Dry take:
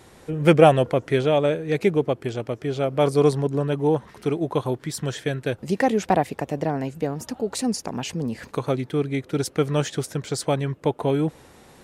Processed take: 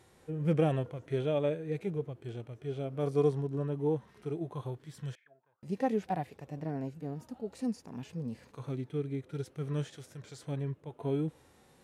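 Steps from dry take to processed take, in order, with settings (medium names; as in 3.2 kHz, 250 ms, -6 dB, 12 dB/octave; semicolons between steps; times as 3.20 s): harmonic-percussive split percussive -17 dB; 5.15–5.63 s: auto-wah 660–2700 Hz, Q 15, down, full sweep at -25.5 dBFS; trim -8.5 dB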